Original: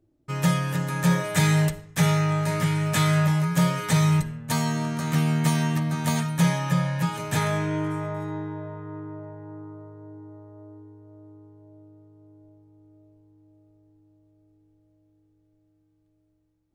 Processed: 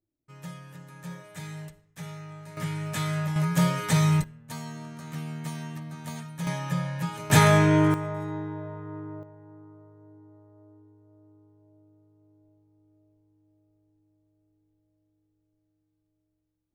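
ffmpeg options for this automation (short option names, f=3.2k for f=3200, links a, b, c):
-af "asetnsamples=n=441:p=0,asendcmd='2.57 volume volume -8dB;3.36 volume volume -1.5dB;4.24 volume volume -13dB;6.47 volume volume -5.5dB;7.3 volume volume 7dB;7.94 volume volume -1.5dB;9.23 volume volume -9dB',volume=-19dB"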